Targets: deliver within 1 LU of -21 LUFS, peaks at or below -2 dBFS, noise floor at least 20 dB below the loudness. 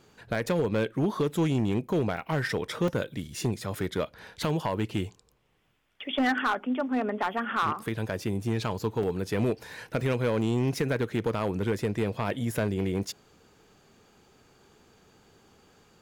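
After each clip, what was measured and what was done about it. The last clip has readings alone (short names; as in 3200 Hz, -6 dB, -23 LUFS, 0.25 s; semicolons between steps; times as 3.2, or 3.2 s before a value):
clipped 1.4%; flat tops at -20.0 dBFS; dropouts 6; longest dropout 2.8 ms; loudness -29.5 LUFS; peak -20.0 dBFS; loudness target -21.0 LUFS
-> clip repair -20 dBFS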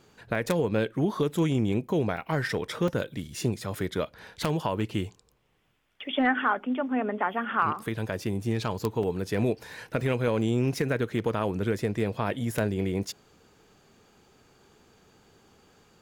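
clipped 0.0%; dropouts 6; longest dropout 2.8 ms
-> interpolate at 0.35/2.17/2.88/3.75/9.03/10.01, 2.8 ms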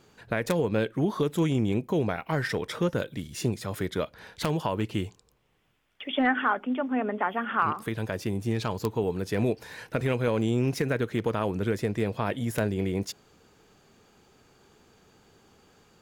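dropouts 0; loudness -28.5 LUFS; peak -11.0 dBFS; loudness target -21.0 LUFS
-> gain +7.5 dB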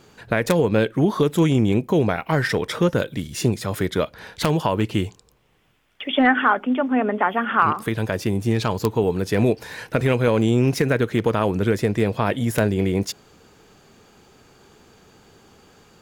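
loudness -21.5 LUFS; peak -3.5 dBFS; noise floor -56 dBFS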